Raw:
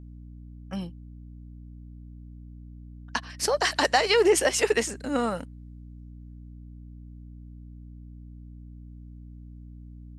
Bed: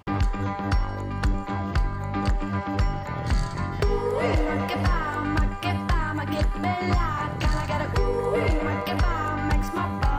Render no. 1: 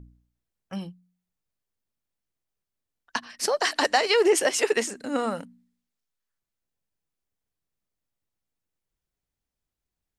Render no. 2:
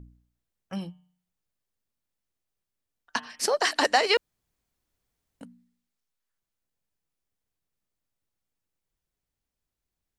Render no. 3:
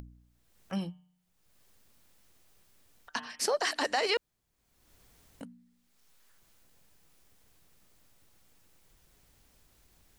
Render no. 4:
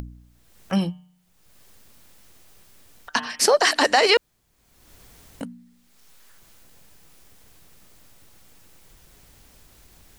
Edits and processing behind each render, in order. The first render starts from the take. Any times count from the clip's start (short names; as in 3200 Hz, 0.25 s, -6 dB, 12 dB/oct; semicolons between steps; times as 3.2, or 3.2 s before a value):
de-hum 60 Hz, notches 5
0.76–3.54 de-hum 151.3 Hz, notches 23; 4.17–5.41 room tone
limiter -19.5 dBFS, peak gain reduction 10 dB; upward compressor, threshold -45 dBFS
gain +12 dB